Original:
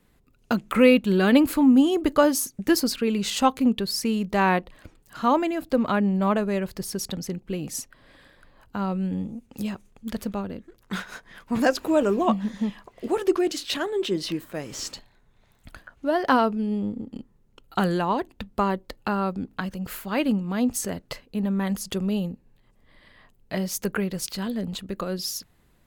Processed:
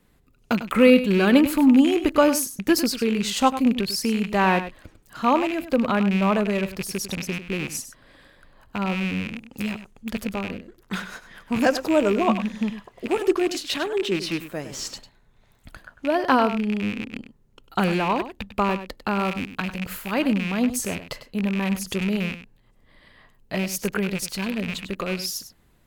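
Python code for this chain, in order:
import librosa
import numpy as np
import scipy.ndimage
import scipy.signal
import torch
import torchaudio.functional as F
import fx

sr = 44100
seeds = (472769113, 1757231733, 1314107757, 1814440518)

y = fx.rattle_buzz(x, sr, strikes_db=-35.0, level_db=-21.0)
y = fx.high_shelf(y, sr, hz=8200.0, db=8.0, at=(19.18, 19.61))
y = y + 10.0 ** (-12.0 / 20.0) * np.pad(y, (int(99 * sr / 1000.0), 0))[:len(y)]
y = y * librosa.db_to_amplitude(1.0)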